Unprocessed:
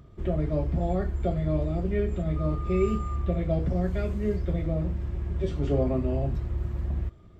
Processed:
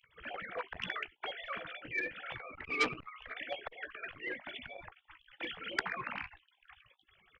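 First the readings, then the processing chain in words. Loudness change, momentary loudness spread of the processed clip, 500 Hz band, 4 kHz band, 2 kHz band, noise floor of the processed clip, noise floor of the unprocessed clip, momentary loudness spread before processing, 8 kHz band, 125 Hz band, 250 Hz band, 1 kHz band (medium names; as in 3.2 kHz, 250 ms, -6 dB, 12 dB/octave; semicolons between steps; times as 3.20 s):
-11.0 dB, 12 LU, -17.0 dB, +9.5 dB, +10.0 dB, -76 dBFS, -49 dBFS, 5 LU, no reading, -31.5 dB, -22.0 dB, -3.5 dB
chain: formants replaced by sine waves; spectral gate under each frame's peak -25 dB weak; doubling 16 ms -12 dB; transformer saturation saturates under 2.4 kHz; trim +12.5 dB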